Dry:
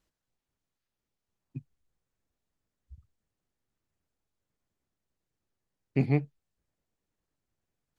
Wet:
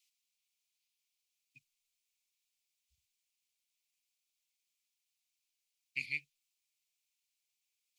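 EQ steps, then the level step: elliptic high-pass 2.3 kHz, stop band 40 dB; +7.5 dB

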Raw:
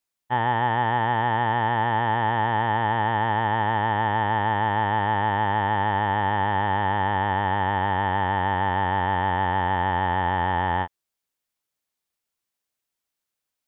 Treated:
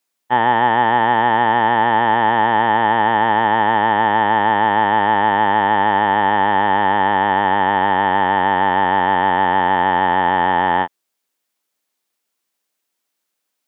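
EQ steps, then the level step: Chebyshev high-pass 240 Hz, order 2; +9.0 dB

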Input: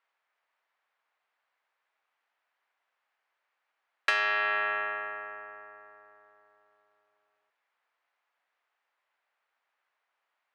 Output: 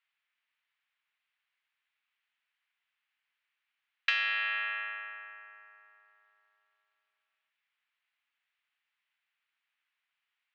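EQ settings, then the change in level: band-pass filter 2.9 kHz, Q 1.5; distance through air 110 m; tilt EQ +3 dB/octave; 0.0 dB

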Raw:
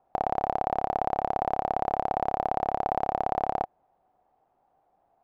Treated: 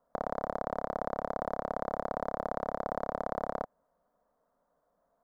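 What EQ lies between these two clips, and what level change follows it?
static phaser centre 530 Hz, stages 8; 0.0 dB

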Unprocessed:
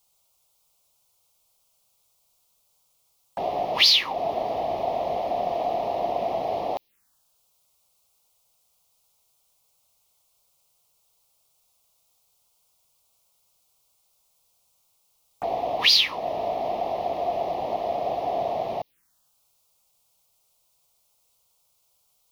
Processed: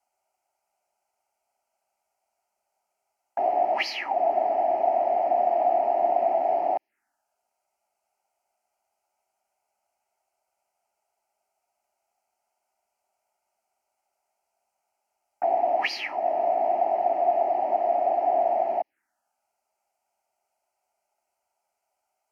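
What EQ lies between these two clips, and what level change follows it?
band-pass filter 880 Hz, Q 0.83; static phaser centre 730 Hz, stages 8; +5.5 dB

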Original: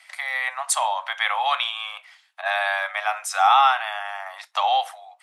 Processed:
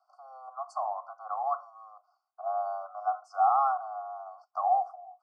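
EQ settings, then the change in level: vowel filter a; brick-wall FIR band-stop 1.5–4.4 kHz; Chebyshev low-pass 5.1 kHz, order 2; 0.0 dB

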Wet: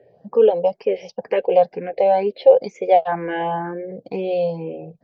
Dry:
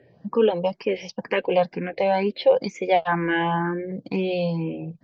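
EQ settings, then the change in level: high-order bell 570 Hz +11.5 dB 1.2 oct; -5.5 dB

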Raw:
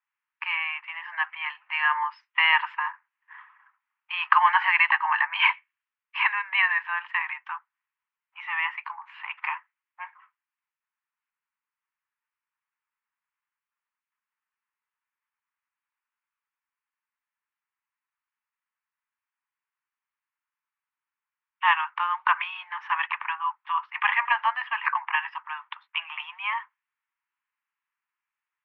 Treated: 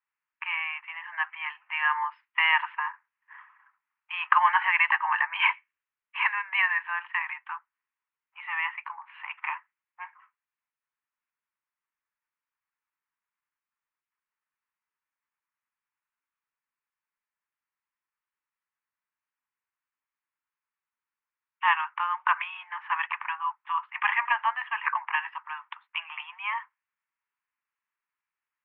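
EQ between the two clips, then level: low-pass 3.1 kHz 24 dB/octave; -2.0 dB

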